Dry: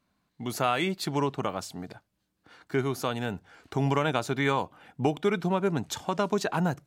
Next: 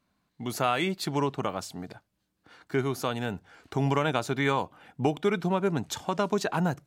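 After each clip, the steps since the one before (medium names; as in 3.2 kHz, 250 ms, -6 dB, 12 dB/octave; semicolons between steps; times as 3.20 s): no audible change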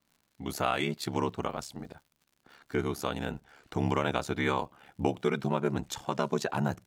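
crackle 130 per s -50 dBFS; ring modulator 35 Hz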